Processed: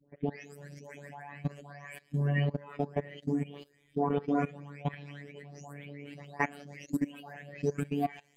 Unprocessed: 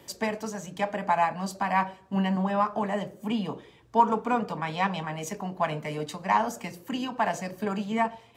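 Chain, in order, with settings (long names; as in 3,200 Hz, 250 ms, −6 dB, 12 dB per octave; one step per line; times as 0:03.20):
every frequency bin delayed by itself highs late, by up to 443 ms
octave-band graphic EQ 125/250/500/1,000/2,000/4,000 Hz +3/+9/+7/−11/+10/−4 dB
output level in coarse steps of 22 dB
phases set to zero 143 Hz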